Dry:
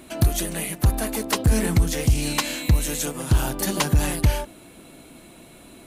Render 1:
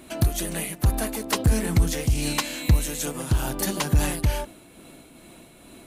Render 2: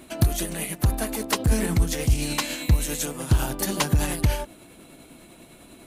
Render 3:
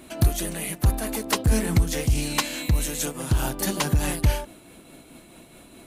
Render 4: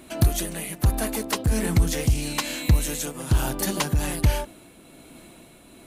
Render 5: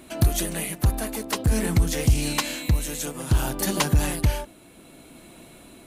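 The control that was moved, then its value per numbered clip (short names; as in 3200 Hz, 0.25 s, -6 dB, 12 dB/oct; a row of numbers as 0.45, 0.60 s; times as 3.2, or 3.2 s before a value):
tremolo, rate: 2.3, 10, 4.7, 1.2, 0.6 Hz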